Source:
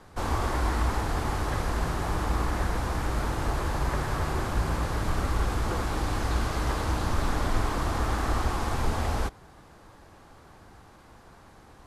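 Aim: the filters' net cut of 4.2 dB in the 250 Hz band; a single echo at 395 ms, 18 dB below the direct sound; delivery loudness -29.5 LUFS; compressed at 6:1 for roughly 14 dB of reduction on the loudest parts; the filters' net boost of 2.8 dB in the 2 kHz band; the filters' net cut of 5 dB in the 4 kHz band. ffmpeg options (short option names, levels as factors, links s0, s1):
-af "equalizer=f=250:t=o:g=-6,equalizer=f=2000:t=o:g=5.5,equalizer=f=4000:t=o:g=-8.5,acompressor=threshold=0.0141:ratio=6,aecho=1:1:395:0.126,volume=3.98"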